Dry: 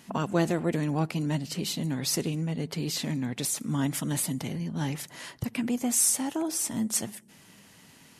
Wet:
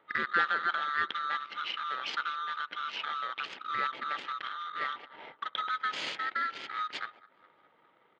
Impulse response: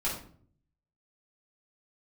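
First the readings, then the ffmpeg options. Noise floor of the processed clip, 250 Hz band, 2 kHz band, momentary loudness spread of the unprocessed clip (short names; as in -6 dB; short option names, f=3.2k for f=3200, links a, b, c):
-66 dBFS, -25.5 dB, +9.0 dB, 8 LU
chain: -filter_complex "[0:a]afftfilt=real='real(if(lt(b,960),b+48*(1-2*mod(floor(b/48),2)),b),0)':imag='imag(if(lt(b,960),b+48*(1-2*mod(floor(b/48),2)),b),0)':win_size=2048:overlap=0.75,asplit=2[a][b];[b]aecho=0:1:208|416|624|832|1040:0.112|0.0651|0.0377|0.0219|0.0127[c];[a][c]amix=inputs=2:normalize=0,adynamicsmooth=sensitivity=6.5:basefreq=830,highpass=260,equalizer=f=730:t=q:w=4:g=-5,equalizer=f=1.2k:t=q:w=4:g=-7,equalizer=f=2.1k:t=q:w=4:g=4,equalizer=f=3.2k:t=q:w=4:g=6,lowpass=f=3.6k:w=0.5412,lowpass=f=3.6k:w=1.3066"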